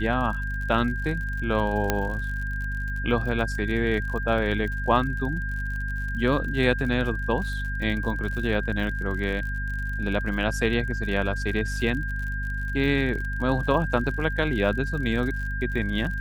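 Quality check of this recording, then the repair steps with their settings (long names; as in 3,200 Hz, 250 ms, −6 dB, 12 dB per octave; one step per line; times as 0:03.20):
surface crackle 59 per second −33 dBFS
mains hum 50 Hz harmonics 5 −30 dBFS
whistle 1,600 Hz −32 dBFS
0:01.90: click −7 dBFS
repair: click removal
notch filter 1,600 Hz, Q 30
hum removal 50 Hz, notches 5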